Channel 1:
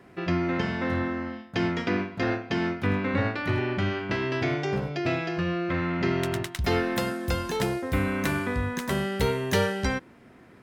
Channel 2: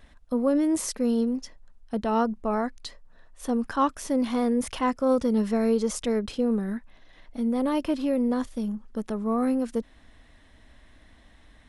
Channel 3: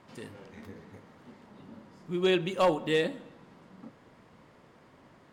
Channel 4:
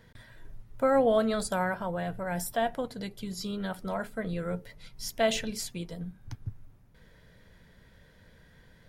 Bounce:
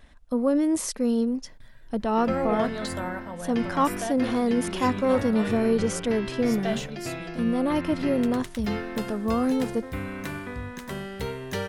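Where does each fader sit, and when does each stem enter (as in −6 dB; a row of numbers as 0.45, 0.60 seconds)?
−7.0, +0.5, −11.0, −4.5 decibels; 2.00, 0.00, 2.50, 1.45 seconds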